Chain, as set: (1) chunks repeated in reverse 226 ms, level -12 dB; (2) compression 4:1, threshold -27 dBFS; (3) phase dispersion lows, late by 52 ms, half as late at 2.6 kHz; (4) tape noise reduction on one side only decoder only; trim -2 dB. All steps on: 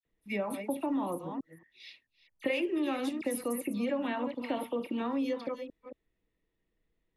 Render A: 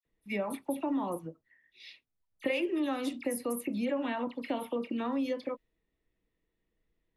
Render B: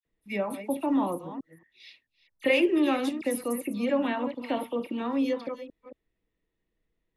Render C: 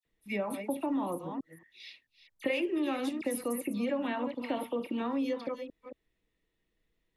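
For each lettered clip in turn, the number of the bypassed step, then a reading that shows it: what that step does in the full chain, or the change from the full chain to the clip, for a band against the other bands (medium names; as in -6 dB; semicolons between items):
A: 1, momentary loudness spread change -7 LU; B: 2, mean gain reduction 3.0 dB; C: 4, momentary loudness spread change -2 LU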